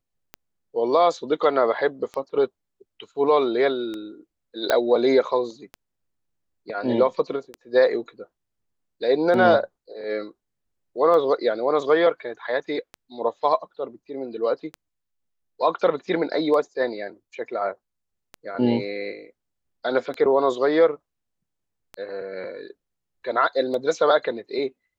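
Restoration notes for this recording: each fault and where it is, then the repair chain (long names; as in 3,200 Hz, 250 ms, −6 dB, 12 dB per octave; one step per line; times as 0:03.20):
scratch tick 33 1/3 rpm −19 dBFS
0:04.70: click −6 dBFS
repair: click removal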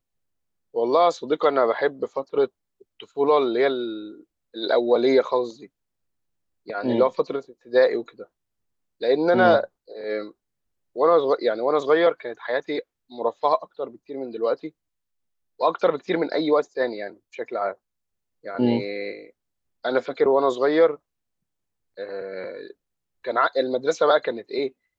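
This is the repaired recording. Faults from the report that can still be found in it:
none of them is left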